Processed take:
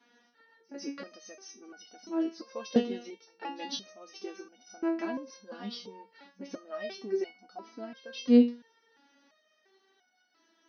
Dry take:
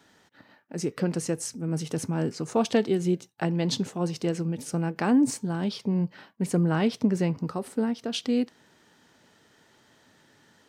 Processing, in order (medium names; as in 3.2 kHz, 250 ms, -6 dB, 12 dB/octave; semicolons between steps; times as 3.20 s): FFT band-pass 190–6300 Hz; pre-echo 147 ms -23 dB; resonator arpeggio 2.9 Hz 240–730 Hz; trim +8.5 dB